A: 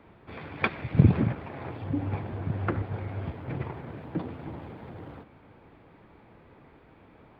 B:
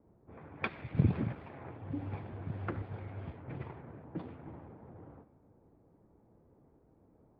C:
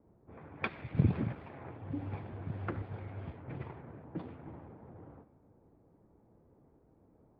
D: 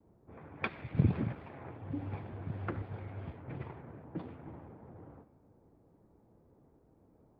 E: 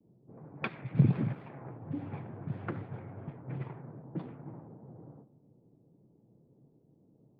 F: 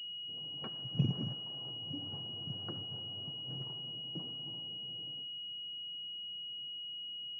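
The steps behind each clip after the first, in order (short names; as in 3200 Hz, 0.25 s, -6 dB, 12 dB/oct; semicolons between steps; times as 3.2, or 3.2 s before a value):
low-pass opened by the level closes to 520 Hz, open at -26 dBFS; gain -9 dB
nothing audible
gate with hold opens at -59 dBFS
resonant low shelf 100 Hz -9 dB, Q 3; low-pass opened by the level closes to 440 Hz, open at -31 dBFS
pulse-width modulation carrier 2900 Hz; gain -7.5 dB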